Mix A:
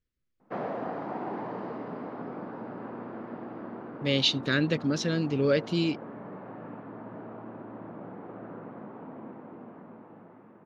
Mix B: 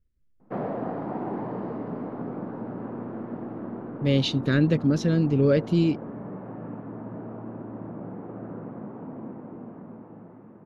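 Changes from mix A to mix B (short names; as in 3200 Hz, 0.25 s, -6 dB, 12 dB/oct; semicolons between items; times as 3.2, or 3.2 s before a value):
speech: remove LPF 5500 Hz 12 dB/oct; master: add tilt -3 dB/oct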